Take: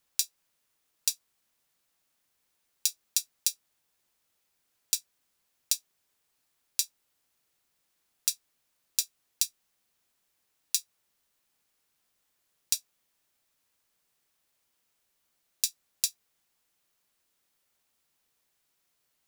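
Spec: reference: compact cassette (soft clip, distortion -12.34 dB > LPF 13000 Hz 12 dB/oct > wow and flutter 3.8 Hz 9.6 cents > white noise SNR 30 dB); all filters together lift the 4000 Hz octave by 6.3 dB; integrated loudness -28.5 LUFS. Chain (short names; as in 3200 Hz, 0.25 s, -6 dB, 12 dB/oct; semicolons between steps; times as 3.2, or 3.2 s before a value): bell 4000 Hz +8 dB; soft clip -10 dBFS; LPF 13000 Hz 12 dB/oct; wow and flutter 3.8 Hz 9.6 cents; white noise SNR 30 dB; gain +1.5 dB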